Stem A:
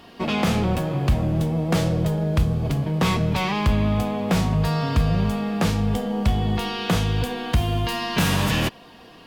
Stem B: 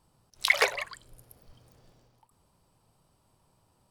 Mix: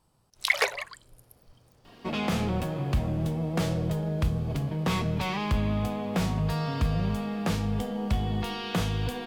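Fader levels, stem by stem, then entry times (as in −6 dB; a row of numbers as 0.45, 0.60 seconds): −6.5, −1.0 decibels; 1.85, 0.00 seconds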